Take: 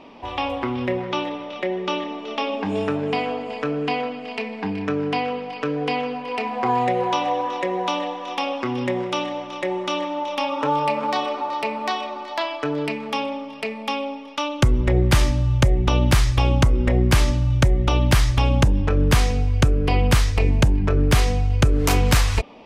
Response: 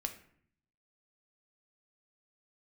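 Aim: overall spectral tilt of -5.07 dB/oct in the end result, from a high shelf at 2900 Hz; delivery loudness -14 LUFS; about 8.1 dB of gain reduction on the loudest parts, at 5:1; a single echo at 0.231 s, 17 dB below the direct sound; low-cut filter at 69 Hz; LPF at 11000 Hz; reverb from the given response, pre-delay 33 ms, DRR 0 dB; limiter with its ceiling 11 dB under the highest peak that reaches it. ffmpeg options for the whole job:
-filter_complex "[0:a]highpass=69,lowpass=11k,highshelf=f=2.9k:g=4.5,acompressor=threshold=-21dB:ratio=5,alimiter=limit=-19dB:level=0:latency=1,aecho=1:1:231:0.141,asplit=2[a][b];[1:a]atrim=start_sample=2205,adelay=33[c];[b][c]afir=irnorm=-1:irlink=0,volume=0dB[d];[a][d]amix=inputs=2:normalize=0,volume=11dB"

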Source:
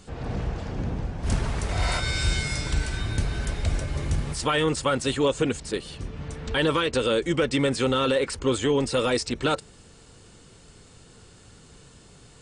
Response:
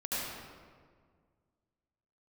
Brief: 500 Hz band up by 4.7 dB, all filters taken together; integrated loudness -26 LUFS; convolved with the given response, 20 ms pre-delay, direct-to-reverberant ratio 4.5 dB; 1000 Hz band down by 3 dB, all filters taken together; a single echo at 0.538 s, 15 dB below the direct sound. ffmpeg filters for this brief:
-filter_complex "[0:a]equalizer=f=500:t=o:g=6.5,equalizer=f=1k:t=o:g=-6,aecho=1:1:538:0.178,asplit=2[a][b];[1:a]atrim=start_sample=2205,adelay=20[c];[b][c]afir=irnorm=-1:irlink=0,volume=-10.5dB[d];[a][d]amix=inputs=2:normalize=0,volume=-3.5dB"

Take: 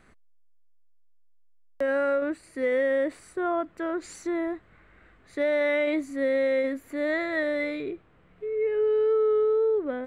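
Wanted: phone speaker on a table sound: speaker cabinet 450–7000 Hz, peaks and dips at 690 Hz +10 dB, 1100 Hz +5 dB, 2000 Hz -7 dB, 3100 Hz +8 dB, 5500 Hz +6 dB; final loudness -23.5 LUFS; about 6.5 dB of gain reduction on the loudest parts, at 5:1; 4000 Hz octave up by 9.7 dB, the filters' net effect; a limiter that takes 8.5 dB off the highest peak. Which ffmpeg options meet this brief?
-af "equalizer=f=4k:t=o:g=6.5,acompressor=threshold=-28dB:ratio=5,alimiter=level_in=4.5dB:limit=-24dB:level=0:latency=1,volume=-4.5dB,highpass=f=450:w=0.5412,highpass=f=450:w=1.3066,equalizer=f=690:t=q:w=4:g=10,equalizer=f=1.1k:t=q:w=4:g=5,equalizer=f=2k:t=q:w=4:g=-7,equalizer=f=3.1k:t=q:w=4:g=8,equalizer=f=5.5k:t=q:w=4:g=6,lowpass=f=7k:w=0.5412,lowpass=f=7k:w=1.3066,volume=12dB"

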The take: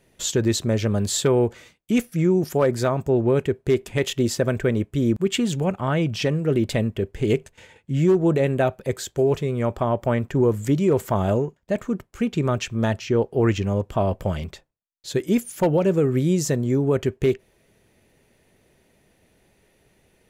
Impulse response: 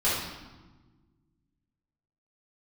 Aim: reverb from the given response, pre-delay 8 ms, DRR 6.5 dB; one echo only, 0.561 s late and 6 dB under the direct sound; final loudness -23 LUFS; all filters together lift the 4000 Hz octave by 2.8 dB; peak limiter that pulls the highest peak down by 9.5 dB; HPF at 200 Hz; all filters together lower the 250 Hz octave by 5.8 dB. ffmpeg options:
-filter_complex "[0:a]highpass=200,equalizer=f=250:t=o:g=-6,equalizer=f=4k:t=o:g=3.5,alimiter=limit=-18dB:level=0:latency=1,aecho=1:1:561:0.501,asplit=2[a][b];[1:a]atrim=start_sample=2205,adelay=8[c];[b][c]afir=irnorm=-1:irlink=0,volume=-19dB[d];[a][d]amix=inputs=2:normalize=0,volume=4.5dB"

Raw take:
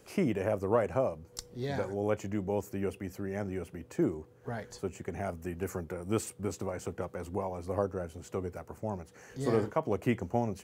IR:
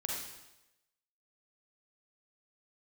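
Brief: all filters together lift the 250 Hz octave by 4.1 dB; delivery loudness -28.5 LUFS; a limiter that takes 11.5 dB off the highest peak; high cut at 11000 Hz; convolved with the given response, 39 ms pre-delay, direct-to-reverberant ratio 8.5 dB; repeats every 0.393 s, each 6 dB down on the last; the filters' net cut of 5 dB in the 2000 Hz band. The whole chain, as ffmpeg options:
-filter_complex "[0:a]lowpass=11k,equalizer=f=250:t=o:g=5.5,equalizer=f=2k:t=o:g=-6.5,alimiter=level_in=1.5dB:limit=-24dB:level=0:latency=1,volume=-1.5dB,aecho=1:1:393|786|1179|1572|1965|2358:0.501|0.251|0.125|0.0626|0.0313|0.0157,asplit=2[a][b];[1:a]atrim=start_sample=2205,adelay=39[c];[b][c]afir=irnorm=-1:irlink=0,volume=-11dB[d];[a][d]amix=inputs=2:normalize=0,volume=7dB"

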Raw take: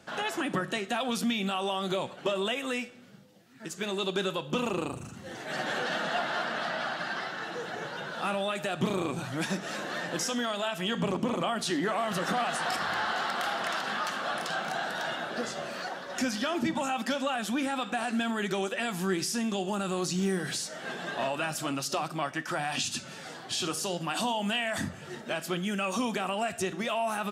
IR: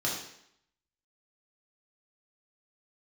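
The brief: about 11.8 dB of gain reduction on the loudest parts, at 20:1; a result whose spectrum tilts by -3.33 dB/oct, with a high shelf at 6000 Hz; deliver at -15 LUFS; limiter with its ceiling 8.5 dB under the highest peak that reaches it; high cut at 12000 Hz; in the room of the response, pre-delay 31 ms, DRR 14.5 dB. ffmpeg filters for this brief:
-filter_complex "[0:a]lowpass=12k,highshelf=f=6k:g=4.5,acompressor=threshold=-36dB:ratio=20,alimiter=level_in=8dB:limit=-24dB:level=0:latency=1,volume=-8dB,asplit=2[a][b];[1:a]atrim=start_sample=2205,adelay=31[c];[b][c]afir=irnorm=-1:irlink=0,volume=-22dB[d];[a][d]amix=inputs=2:normalize=0,volume=26dB"

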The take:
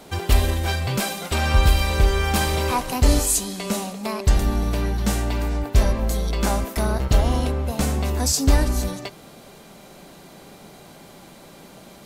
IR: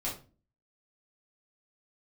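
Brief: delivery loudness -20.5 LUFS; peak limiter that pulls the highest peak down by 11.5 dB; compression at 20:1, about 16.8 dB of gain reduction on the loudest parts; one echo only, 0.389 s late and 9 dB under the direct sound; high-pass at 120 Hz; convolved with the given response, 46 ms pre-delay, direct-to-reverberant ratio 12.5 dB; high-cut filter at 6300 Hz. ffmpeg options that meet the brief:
-filter_complex "[0:a]highpass=120,lowpass=6.3k,acompressor=threshold=-35dB:ratio=20,alimiter=level_in=10dB:limit=-24dB:level=0:latency=1,volume=-10dB,aecho=1:1:389:0.355,asplit=2[a][b];[1:a]atrim=start_sample=2205,adelay=46[c];[b][c]afir=irnorm=-1:irlink=0,volume=-16.5dB[d];[a][d]amix=inputs=2:normalize=0,volume=22dB"

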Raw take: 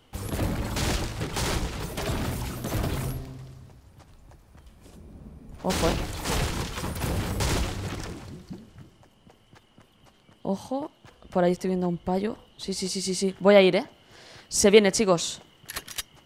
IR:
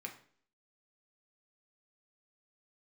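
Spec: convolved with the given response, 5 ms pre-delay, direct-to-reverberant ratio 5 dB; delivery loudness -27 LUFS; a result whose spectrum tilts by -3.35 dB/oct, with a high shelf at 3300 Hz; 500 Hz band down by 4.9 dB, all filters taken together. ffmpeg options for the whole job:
-filter_complex "[0:a]equalizer=f=500:t=o:g=-6.5,highshelf=f=3.3k:g=7,asplit=2[a][b];[1:a]atrim=start_sample=2205,adelay=5[c];[b][c]afir=irnorm=-1:irlink=0,volume=-3.5dB[d];[a][d]amix=inputs=2:normalize=0,volume=-2dB"

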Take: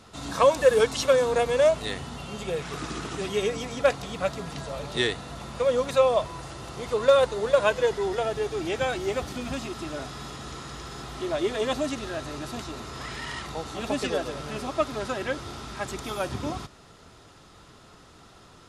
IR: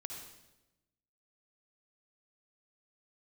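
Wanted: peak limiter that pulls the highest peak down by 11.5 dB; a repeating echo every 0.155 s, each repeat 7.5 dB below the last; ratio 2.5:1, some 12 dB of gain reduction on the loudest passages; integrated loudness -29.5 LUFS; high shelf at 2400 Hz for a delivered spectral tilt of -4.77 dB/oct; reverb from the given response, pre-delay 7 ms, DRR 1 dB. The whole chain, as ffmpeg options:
-filter_complex "[0:a]highshelf=f=2.4k:g=-7,acompressor=threshold=-33dB:ratio=2.5,alimiter=level_in=6.5dB:limit=-24dB:level=0:latency=1,volume=-6.5dB,aecho=1:1:155|310|465|620|775:0.422|0.177|0.0744|0.0312|0.0131,asplit=2[a][b];[1:a]atrim=start_sample=2205,adelay=7[c];[b][c]afir=irnorm=-1:irlink=0,volume=1.5dB[d];[a][d]amix=inputs=2:normalize=0,volume=6.5dB"

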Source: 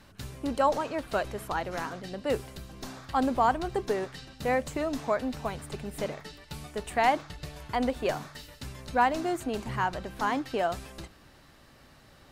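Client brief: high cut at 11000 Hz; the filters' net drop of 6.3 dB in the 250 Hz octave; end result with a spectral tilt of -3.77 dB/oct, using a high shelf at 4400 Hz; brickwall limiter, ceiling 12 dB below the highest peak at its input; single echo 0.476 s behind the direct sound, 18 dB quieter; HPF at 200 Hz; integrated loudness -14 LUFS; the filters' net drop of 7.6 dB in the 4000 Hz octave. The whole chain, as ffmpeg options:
-af "highpass=200,lowpass=11k,equalizer=f=250:t=o:g=-6,equalizer=f=4k:t=o:g=-9,highshelf=f=4.4k:g=-3,alimiter=level_in=0.5dB:limit=-24dB:level=0:latency=1,volume=-0.5dB,aecho=1:1:476:0.126,volume=23dB"

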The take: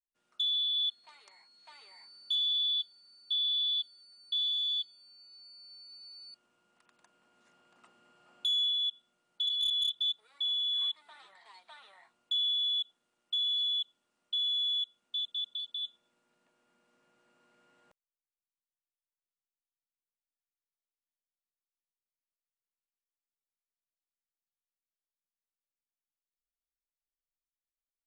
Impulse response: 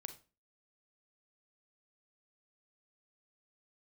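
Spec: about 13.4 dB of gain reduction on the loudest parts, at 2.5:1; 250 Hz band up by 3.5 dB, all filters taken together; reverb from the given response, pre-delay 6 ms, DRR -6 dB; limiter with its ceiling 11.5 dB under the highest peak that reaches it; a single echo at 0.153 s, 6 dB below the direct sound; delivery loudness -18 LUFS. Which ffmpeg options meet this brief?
-filter_complex "[0:a]equalizer=f=250:t=o:g=4.5,acompressor=threshold=-50dB:ratio=2.5,alimiter=level_in=18dB:limit=-24dB:level=0:latency=1,volume=-18dB,aecho=1:1:153:0.501,asplit=2[a][b];[1:a]atrim=start_sample=2205,adelay=6[c];[b][c]afir=irnorm=-1:irlink=0,volume=10dB[d];[a][d]amix=inputs=2:normalize=0,volume=24.5dB"

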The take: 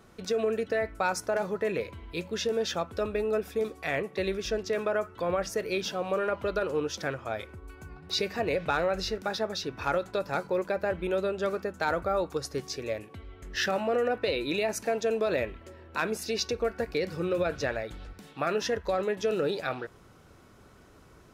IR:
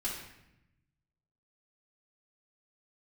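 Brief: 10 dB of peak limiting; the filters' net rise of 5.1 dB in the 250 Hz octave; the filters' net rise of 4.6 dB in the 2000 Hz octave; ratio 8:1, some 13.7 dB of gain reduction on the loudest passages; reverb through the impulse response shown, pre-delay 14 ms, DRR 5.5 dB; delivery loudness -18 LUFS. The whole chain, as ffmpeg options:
-filter_complex "[0:a]equalizer=f=250:t=o:g=7,equalizer=f=2k:t=o:g=6,acompressor=threshold=-36dB:ratio=8,alimiter=level_in=6dB:limit=-24dB:level=0:latency=1,volume=-6dB,asplit=2[a][b];[1:a]atrim=start_sample=2205,adelay=14[c];[b][c]afir=irnorm=-1:irlink=0,volume=-8.5dB[d];[a][d]amix=inputs=2:normalize=0,volume=22dB"

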